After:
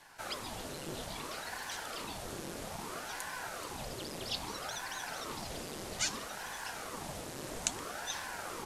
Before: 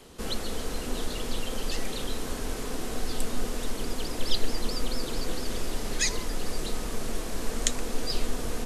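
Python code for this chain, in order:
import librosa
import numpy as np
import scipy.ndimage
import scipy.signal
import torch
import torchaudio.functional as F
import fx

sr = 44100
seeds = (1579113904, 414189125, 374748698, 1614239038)

y = scipy.signal.sosfilt(scipy.signal.butter(4, 89.0, 'highpass', fs=sr, output='sos'), x)
y = fx.ring_lfo(y, sr, carrier_hz=680.0, swing_pct=90, hz=0.61)
y = F.gain(torch.from_numpy(y), -3.5).numpy()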